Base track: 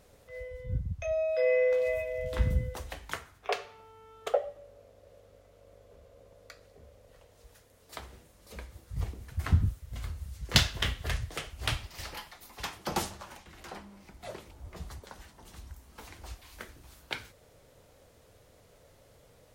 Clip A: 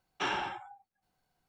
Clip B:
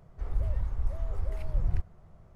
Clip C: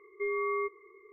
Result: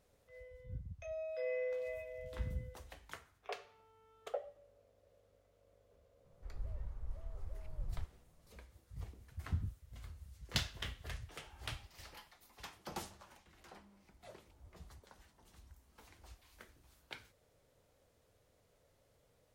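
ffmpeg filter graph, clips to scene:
-filter_complex "[0:a]volume=-13dB[a];[1:a]acompressor=threshold=-42dB:ratio=6:attack=3.2:release=140:knee=1:detection=peak[b];[2:a]atrim=end=2.35,asetpts=PTS-STARTPTS,volume=-14dB,afade=t=in:d=0.004:c=hsin,afade=t=out:st=2.346:d=0.004:c=hsin,adelay=6240[c];[b]atrim=end=1.48,asetpts=PTS-STARTPTS,volume=-17.5dB,afade=t=in:d=0.004:c=hsin,afade=t=out:st=1.476:d=0.004:c=hsin,adelay=11090[d];[a][c][d]amix=inputs=3:normalize=0"

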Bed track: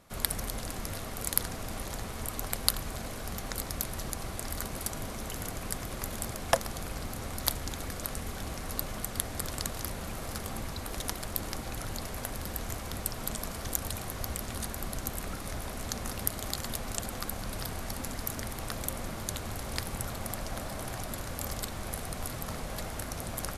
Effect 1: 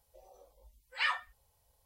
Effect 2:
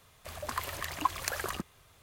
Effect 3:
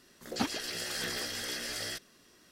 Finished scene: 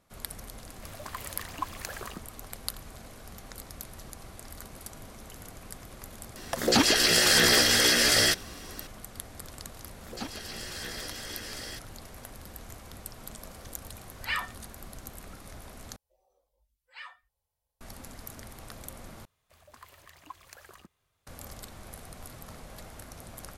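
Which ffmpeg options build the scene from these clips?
-filter_complex "[2:a]asplit=2[a][b];[3:a]asplit=2[c][d];[1:a]asplit=2[e][f];[0:a]volume=-8.5dB[g];[c]alimiter=level_in=24.5dB:limit=-1dB:release=50:level=0:latency=1[h];[d]alimiter=limit=-18.5dB:level=0:latency=1:release=250[i];[g]asplit=3[j][k][l];[j]atrim=end=15.964[m];[f]atrim=end=1.85,asetpts=PTS-STARTPTS,volume=-14dB[n];[k]atrim=start=17.806:end=19.254[o];[b]atrim=end=2.02,asetpts=PTS-STARTPTS,volume=-16.5dB[p];[l]atrim=start=21.266[q];[a]atrim=end=2.02,asetpts=PTS-STARTPTS,volume=-5dB,afade=t=in:d=0.004:c=hsin,afade=t=out:st=2.016:d=0.004:c=hsin,adelay=570[r];[h]atrim=end=2.51,asetpts=PTS-STARTPTS,volume=-9dB,afade=t=in:d=0.004:c=hsin,afade=t=out:st=2.506:d=0.004:c=hsin,adelay=6360[s];[i]atrim=end=2.51,asetpts=PTS-STARTPTS,volume=-3.5dB,afade=t=in:d=0.004:c=hsin,afade=t=out:st=2.506:d=0.004:c=hsin,adelay=9810[t];[e]atrim=end=1.85,asetpts=PTS-STARTPTS,afade=t=in:d=0.004:c=hsin,afade=t=out:st=1.846:d=0.004:c=hsin,adelay=13280[u];[m][n]acrossfade=d=0.004:c1=hsin:c2=hsin[v];[v][o]acrossfade=d=0.004:c1=hsin:c2=hsin[w];[w][p]acrossfade=d=0.004:c1=hsin:c2=hsin[x];[x][q]acrossfade=d=0.004:c1=hsin:c2=hsin[y];[y][r][s][t][u]amix=inputs=5:normalize=0"

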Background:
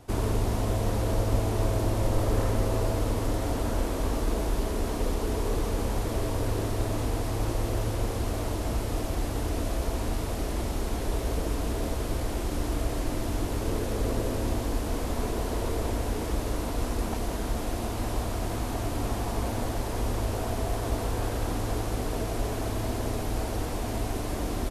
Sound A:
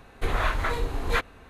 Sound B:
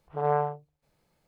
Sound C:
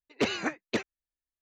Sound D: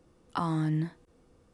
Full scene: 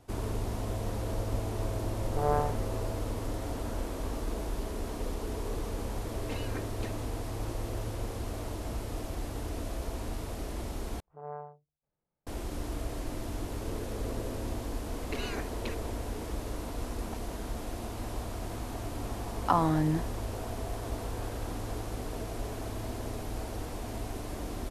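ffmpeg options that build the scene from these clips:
-filter_complex "[2:a]asplit=2[a][b];[3:a]asplit=2[c][d];[0:a]volume=-7dB[e];[c]aecho=1:1:3.8:0.65[f];[b]lowpass=1.6k[g];[d]acompressor=threshold=-34dB:ratio=6:attack=3.2:release=140:knee=1:detection=peak[h];[4:a]equalizer=f=690:t=o:w=1.9:g=12[i];[e]asplit=2[j][k];[j]atrim=end=11.004[l];[g]atrim=end=1.27,asetpts=PTS-STARTPTS,volume=-16dB[m];[k]atrim=start=12.266[n];[a]atrim=end=1.27,asetpts=PTS-STARTPTS,volume=-3.5dB,afade=t=in:d=0.004:c=hsin,afade=t=out:st=1.266:d=0.004:c=hsin,adelay=2000[o];[f]atrim=end=1.41,asetpts=PTS-STARTPTS,volume=-15dB,afade=t=in:d=0.004:c=hsin,afade=t=out:st=1.406:d=0.004:c=hsin,adelay=6090[p];[h]atrim=end=1.41,asetpts=PTS-STARTPTS,volume=-1.5dB,afade=t=in:d=0.004:c=hsin,afade=t=out:st=1.406:d=0.004:c=hsin,adelay=657972S[q];[i]atrim=end=1.53,asetpts=PTS-STARTPTS,volume=-2dB,afade=t=in:d=0.004:c=hsin,afade=t=out:st=1.526:d=0.004:c=hsin,adelay=19130[r];[l][m]acrossfade=d=0.004:c1=hsin:c2=hsin[s];[s][n]acrossfade=d=0.004:c1=hsin:c2=hsin[t];[t][o][p][q][r]amix=inputs=5:normalize=0"

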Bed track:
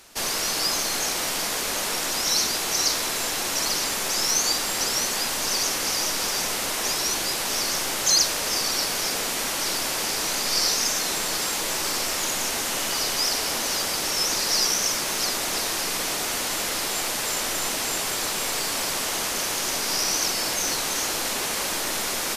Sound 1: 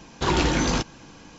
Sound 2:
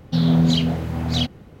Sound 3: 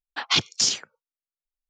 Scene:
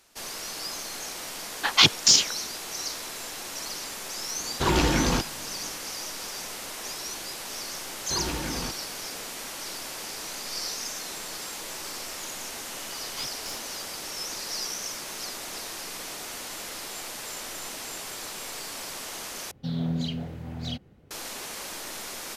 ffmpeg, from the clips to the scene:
-filter_complex "[3:a]asplit=2[a][b];[1:a]asplit=2[c][d];[0:a]volume=-10.5dB[e];[a]acontrast=31[f];[b]aeval=exprs='clip(val(0),-1,0.0376)':c=same[g];[2:a]equalizer=f=1.1k:t=o:w=0.55:g=-3.5[h];[e]asplit=2[i][j];[i]atrim=end=19.514[k];[h]atrim=end=1.6,asetpts=PTS-STARTPTS,volume=-12dB[l];[j]atrim=start=21.106[m];[f]atrim=end=1.69,asetpts=PTS-STARTPTS,volume=-0.5dB,afade=t=in:d=0.004:c=hsin,afade=t=out:st=1.686:d=0.004:c=hsin,adelay=1470[n];[c]atrim=end=1.38,asetpts=PTS-STARTPTS,volume=-1dB,afade=t=in:d=0.004:c=hsin,afade=t=out:st=1.376:d=0.004:c=hsin,adelay=4390[o];[d]atrim=end=1.38,asetpts=PTS-STARTPTS,volume=-10.5dB,afade=t=in:d=0.004:c=hsin,afade=t=out:st=1.376:d=0.004:c=hsin,adelay=7890[p];[g]atrim=end=1.69,asetpts=PTS-STARTPTS,volume=-16.5dB,afade=t=in:d=0.004:c=hsin,afade=t=out:st=1.686:d=0.004:c=hsin,adelay=12860[q];[k][l]acrossfade=d=0.004:c1=hsin:c2=hsin[r];[r][m]acrossfade=d=0.004:c1=hsin:c2=hsin[s];[s][n][o][p][q]amix=inputs=5:normalize=0"

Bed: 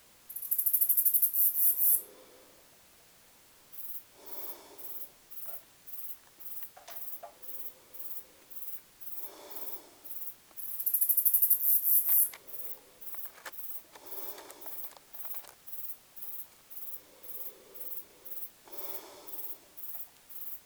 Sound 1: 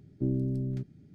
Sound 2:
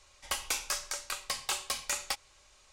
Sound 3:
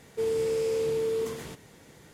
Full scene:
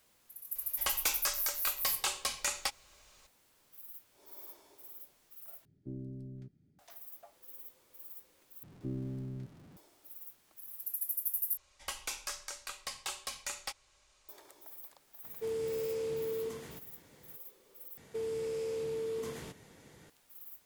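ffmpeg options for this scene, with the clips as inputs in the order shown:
-filter_complex "[2:a]asplit=2[a][b];[1:a]asplit=2[c][d];[3:a]asplit=2[e][f];[0:a]volume=-9dB[g];[d]aeval=exprs='val(0)+0.5*0.00708*sgn(val(0))':c=same[h];[f]acompressor=threshold=-29dB:ratio=6:attack=3.2:release=140:knee=1:detection=peak[i];[g]asplit=5[j][k][l][m][n];[j]atrim=end=5.654[o];[c]atrim=end=1.14,asetpts=PTS-STARTPTS,volume=-14dB[p];[k]atrim=start=6.786:end=8.634[q];[h]atrim=end=1.14,asetpts=PTS-STARTPTS,volume=-10dB[r];[l]atrim=start=9.766:end=11.574[s];[b]atrim=end=2.72,asetpts=PTS-STARTPTS,volume=-6.5dB[t];[m]atrim=start=14.286:end=17.974[u];[i]atrim=end=2.13,asetpts=PTS-STARTPTS,volume=-4.5dB[v];[n]atrim=start=20.096[w];[a]atrim=end=2.72,asetpts=PTS-STARTPTS,volume=-0.5dB,afade=t=in:d=0.004:c=hsin,afade=t=out:st=2.716:d=0.004:c=hsin,adelay=550[x];[e]atrim=end=2.13,asetpts=PTS-STARTPTS,volume=-8dB,afade=t=in:d=0.004:c=hsin,afade=t=out:st=2.126:d=0.004:c=hsin,adelay=672084S[y];[o][p]acrossfade=d=0.004:c1=hsin:c2=hsin[z];[z][q]acrossfade=d=0.004:c1=hsin:c2=hsin[aa];[aa][r]acrossfade=d=0.004:c1=hsin:c2=hsin[ab];[ab][s]acrossfade=d=0.004:c1=hsin:c2=hsin[ac];[ac][t]acrossfade=d=0.004:c1=hsin:c2=hsin[ad];[ad][u]acrossfade=d=0.004:c1=hsin:c2=hsin[ae];[ae][v]acrossfade=d=0.004:c1=hsin:c2=hsin[af];[af][w]acrossfade=d=0.004:c1=hsin:c2=hsin[ag];[ag][x][y]amix=inputs=3:normalize=0"

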